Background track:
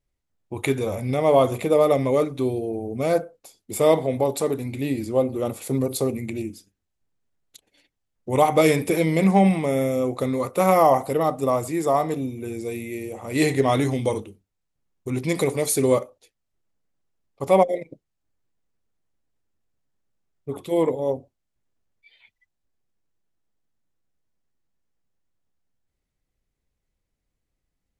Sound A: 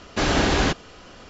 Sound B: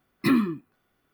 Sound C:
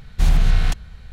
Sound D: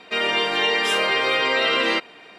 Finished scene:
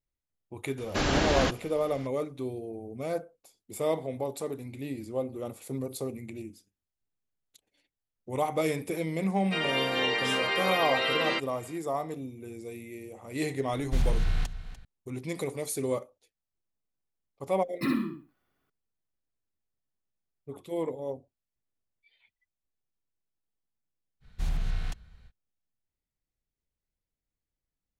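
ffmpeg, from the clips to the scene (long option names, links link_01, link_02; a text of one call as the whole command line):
ffmpeg -i bed.wav -i cue0.wav -i cue1.wav -i cue2.wav -i cue3.wav -filter_complex "[3:a]asplit=2[link_01][link_02];[0:a]volume=-11dB[link_03];[link_01]aecho=1:1:295:0.188[link_04];[2:a]aecho=1:1:64|128|192:0.631|0.145|0.0334[link_05];[1:a]atrim=end=1.29,asetpts=PTS-STARTPTS,volume=-6dB,afade=type=in:duration=0.004:curve=hsin,afade=type=out:start_time=1.286:duration=0.004:curve=hsin,adelay=780[link_06];[4:a]atrim=end=2.38,asetpts=PTS-STARTPTS,volume=-8dB,afade=type=in:duration=0.004:curve=hsin,afade=type=out:start_time=2.376:duration=0.004:curve=hsin,adelay=9400[link_07];[link_04]atrim=end=1.12,asetpts=PTS-STARTPTS,volume=-10.5dB,afade=type=in:duration=0.004:curve=hsin,afade=type=out:start_time=1.116:duration=0.004:curve=hsin,adelay=13730[link_08];[link_05]atrim=end=1.13,asetpts=PTS-STARTPTS,volume=-8dB,afade=type=in:duration=0.004:curve=hsin,afade=type=out:start_time=1.126:duration=0.004:curve=hsin,adelay=17570[link_09];[link_02]atrim=end=1.12,asetpts=PTS-STARTPTS,volume=-14.5dB,afade=type=in:duration=0.05,afade=type=out:start_time=1.07:duration=0.05,adelay=24200[link_10];[link_03][link_06][link_07][link_08][link_09][link_10]amix=inputs=6:normalize=0" out.wav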